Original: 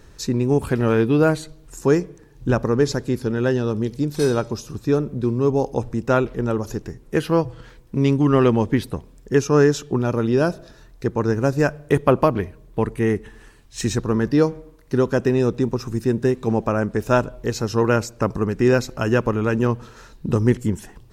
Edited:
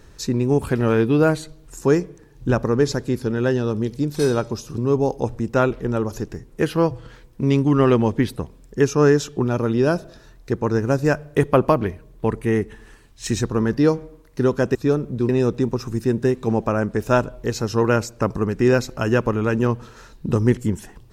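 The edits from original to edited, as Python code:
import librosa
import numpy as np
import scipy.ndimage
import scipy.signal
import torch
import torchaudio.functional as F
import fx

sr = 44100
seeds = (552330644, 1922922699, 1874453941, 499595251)

y = fx.edit(x, sr, fx.move(start_s=4.78, length_s=0.54, to_s=15.29), tone=tone)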